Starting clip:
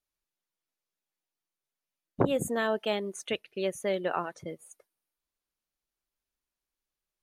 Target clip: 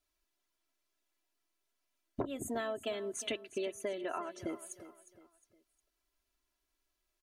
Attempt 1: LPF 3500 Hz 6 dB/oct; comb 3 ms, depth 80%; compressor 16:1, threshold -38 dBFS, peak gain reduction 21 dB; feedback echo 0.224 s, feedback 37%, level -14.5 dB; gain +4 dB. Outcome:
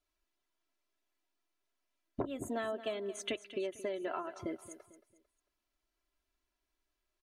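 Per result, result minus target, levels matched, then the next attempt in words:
echo 0.134 s early; 8000 Hz band -5.0 dB
LPF 3500 Hz 6 dB/oct; comb 3 ms, depth 80%; compressor 16:1, threshold -38 dBFS, peak gain reduction 21 dB; feedback echo 0.358 s, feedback 37%, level -14.5 dB; gain +4 dB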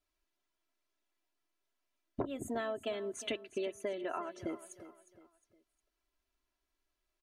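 8000 Hz band -4.5 dB
LPF 10000 Hz 6 dB/oct; comb 3 ms, depth 80%; compressor 16:1, threshold -38 dBFS, peak gain reduction 21.5 dB; feedback echo 0.358 s, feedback 37%, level -14.5 dB; gain +4 dB

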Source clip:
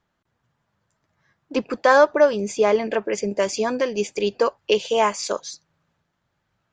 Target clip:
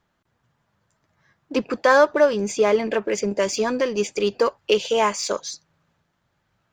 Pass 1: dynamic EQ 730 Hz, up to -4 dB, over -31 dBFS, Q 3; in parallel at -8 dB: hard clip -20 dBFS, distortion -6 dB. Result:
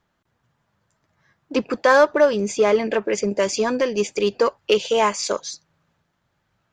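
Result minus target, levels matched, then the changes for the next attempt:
hard clip: distortion -5 dB
change: hard clip -30 dBFS, distortion -2 dB

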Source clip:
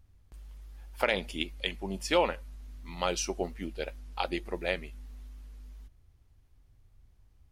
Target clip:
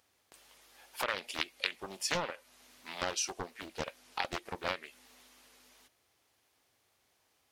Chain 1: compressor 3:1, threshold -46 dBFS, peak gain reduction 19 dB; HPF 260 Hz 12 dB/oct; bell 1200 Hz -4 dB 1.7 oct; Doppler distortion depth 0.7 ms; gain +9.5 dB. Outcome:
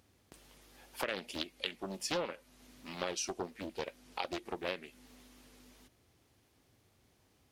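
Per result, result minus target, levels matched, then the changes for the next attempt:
250 Hz band +6.5 dB; compressor: peak gain reduction +4 dB
change: HPF 630 Hz 12 dB/oct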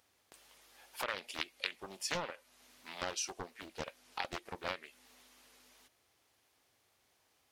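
compressor: peak gain reduction +4 dB
change: compressor 3:1, threshold -40 dBFS, peak gain reduction 15 dB

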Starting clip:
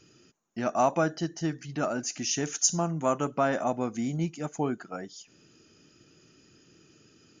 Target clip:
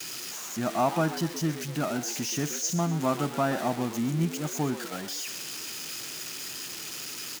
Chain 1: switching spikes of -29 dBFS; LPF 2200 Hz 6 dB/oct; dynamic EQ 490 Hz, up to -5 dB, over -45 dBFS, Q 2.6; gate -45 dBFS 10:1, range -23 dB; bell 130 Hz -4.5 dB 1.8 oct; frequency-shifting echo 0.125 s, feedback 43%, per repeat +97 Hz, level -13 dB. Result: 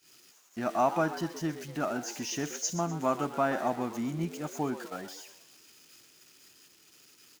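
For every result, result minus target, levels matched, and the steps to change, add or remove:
switching spikes: distortion -11 dB; 125 Hz band -6.0 dB
change: switching spikes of -18 dBFS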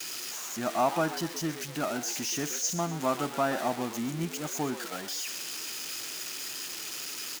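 125 Hz band -6.0 dB
change: bell 130 Hz +4 dB 1.8 oct

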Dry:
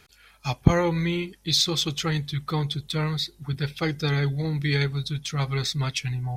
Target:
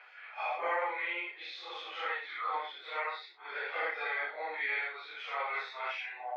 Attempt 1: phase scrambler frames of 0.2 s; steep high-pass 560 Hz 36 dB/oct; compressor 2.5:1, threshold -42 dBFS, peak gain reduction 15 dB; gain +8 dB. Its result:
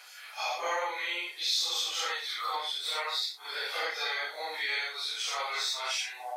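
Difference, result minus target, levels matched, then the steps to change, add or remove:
2000 Hz band -4.0 dB
add after compressor: Chebyshev low-pass 2300 Hz, order 3

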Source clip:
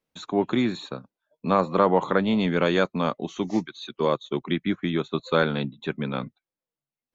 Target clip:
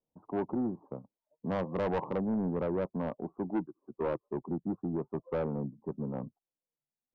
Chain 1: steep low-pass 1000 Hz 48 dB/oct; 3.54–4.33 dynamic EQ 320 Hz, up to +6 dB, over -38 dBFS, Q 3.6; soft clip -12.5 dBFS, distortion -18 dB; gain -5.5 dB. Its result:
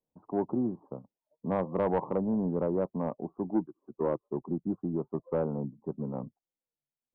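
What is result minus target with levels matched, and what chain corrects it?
soft clip: distortion -8 dB
steep low-pass 1000 Hz 48 dB/oct; 3.54–4.33 dynamic EQ 320 Hz, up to +6 dB, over -38 dBFS, Q 3.6; soft clip -20 dBFS, distortion -10 dB; gain -5.5 dB

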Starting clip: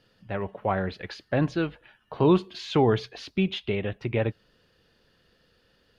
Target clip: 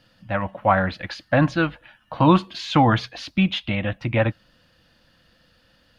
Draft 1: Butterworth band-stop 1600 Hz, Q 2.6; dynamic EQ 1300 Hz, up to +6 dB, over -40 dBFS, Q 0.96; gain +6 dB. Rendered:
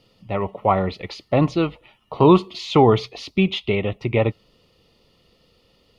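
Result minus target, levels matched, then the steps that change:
2000 Hz band -7.0 dB
change: Butterworth band-stop 410 Hz, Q 2.6

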